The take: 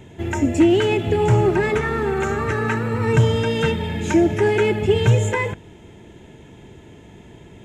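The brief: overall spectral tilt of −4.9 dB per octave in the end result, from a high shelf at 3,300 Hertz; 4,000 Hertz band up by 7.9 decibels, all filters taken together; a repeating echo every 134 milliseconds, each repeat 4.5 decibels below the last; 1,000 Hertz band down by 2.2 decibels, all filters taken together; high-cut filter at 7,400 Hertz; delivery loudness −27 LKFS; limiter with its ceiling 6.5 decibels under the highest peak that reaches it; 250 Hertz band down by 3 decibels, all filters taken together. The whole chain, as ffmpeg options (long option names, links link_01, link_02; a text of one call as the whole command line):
ffmpeg -i in.wav -af "lowpass=7400,equalizer=frequency=250:width_type=o:gain=-4.5,equalizer=frequency=1000:width_type=o:gain=-3.5,highshelf=frequency=3300:gain=6,equalizer=frequency=4000:width_type=o:gain=7.5,alimiter=limit=-12dB:level=0:latency=1,aecho=1:1:134|268|402|536|670|804|938|1072|1206:0.596|0.357|0.214|0.129|0.0772|0.0463|0.0278|0.0167|0.01,volume=-7.5dB" out.wav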